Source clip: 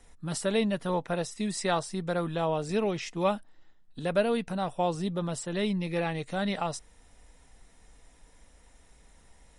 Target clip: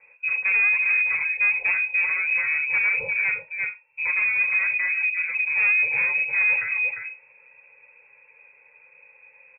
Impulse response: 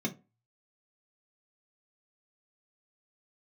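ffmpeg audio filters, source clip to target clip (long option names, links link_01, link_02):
-filter_complex "[0:a]asettb=1/sr,asplit=3[link_01][link_02][link_03];[link_01]atrim=end=2.434[link_04];[link_02]atrim=start=2.43:end=4.07,asetpts=PTS-STARTPTS,afade=type=in:duration=0.004:curve=qsin,afade=type=out:start_time=1.636:duration=0.004:curve=qsin,aecho=1:1:2.3:0.66,atrim=end_sample=72324[link_05];[link_03]atrim=start=4.066[link_06];[link_04][link_05]acrossfade=duration=0.004:curve1=hsin:curve2=qsin[link_07];[link_07][link_06]acrossfade=duration=0.004:curve1=qsin:curve2=hsin,aecho=1:1:349:0.355,alimiter=limit=-19dB:level=0:latency=1:release=253[link_08];[1:a]atrim=start_sample=2205,atrim=end_sample=6174[link_09];[link_08][link_09]afir=irnorm=-1:irlink=0,asettb=1/sr,asplit=3[link_10][link_11][link_12];[link_10]atrim=end=4.714[link_13];[link_11]atrim=start=4.71:end=5.32,asetpts=PTS-STARTPTS,afade=type=in:duration=0.004:curve=qsin,afade=type=out:start_time=0.606:duration=0.004:curve=qsin,acompressor=threshold=-18dB:ratio=6[link_14];[link_12]atrim=start=5.316[link_15];[link_13][link_14]acrossfade=duration=0.004:curve1=hsin:curve2=qsin[link_16];[link_16][link_15]acrossfade=duration=0.004:curve1=qsin:curve2=hsin,equalizer=frequency=1700:width=1.5:gain=3,asoftclip=type=tanh:threshold=-18dB,lowpass=frequency=2300:width_type=q:width=0.5098,lowpass=frequency=2300:width_type=q:width=0.6013,lowpass=frequency=2300:width_type=q:width=0.9,lowpass=frequency=2300:width_type=q:width=2.563,afreqshift=-2700"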